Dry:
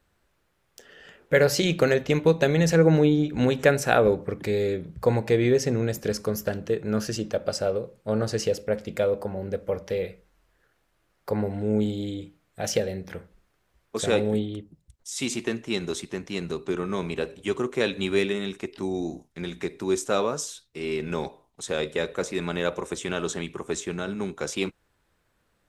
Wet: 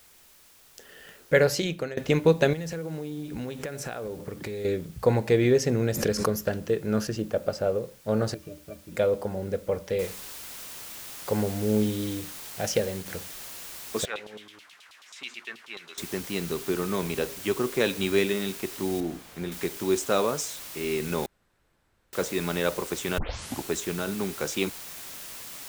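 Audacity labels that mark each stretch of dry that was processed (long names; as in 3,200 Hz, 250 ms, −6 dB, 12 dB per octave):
1.330000	1.970000	fade out, to −20 dB
2.530000	4.650000	downward compressor 16 to 1, threshold −30 dBFS
5.840000	6.470000	background raised ahead of every attack at most 63 dB per second
7.070000	7.830000	low-pass filter 2,000 Hz 6 dB per octave
8.340000	8.920000	resonances in every octave D, decay 0.12 s
9.990000	9.990000	noise floor change −56 dB −41 dB
12.660000	13.060000	mu-law and A-law mismatch coded by A
14.050000	15.980000	auto-filter band-pass saw down 9.3 Hz 1,000–3,700 Hz
19.000000	19.520000	high-shelf EQ 2,900 Hz −11.5 dB
21.260000	22.130000	fill with room tone
23.180000	23.180000	tape start 0.53 s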